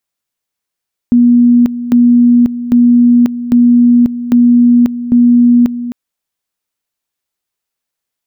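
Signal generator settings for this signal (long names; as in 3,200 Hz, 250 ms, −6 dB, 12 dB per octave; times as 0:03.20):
tone at two levels in turn 241 Hz −3.5 dBFS, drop 13 dB, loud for 0.54 s, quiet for 0.26 s, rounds 6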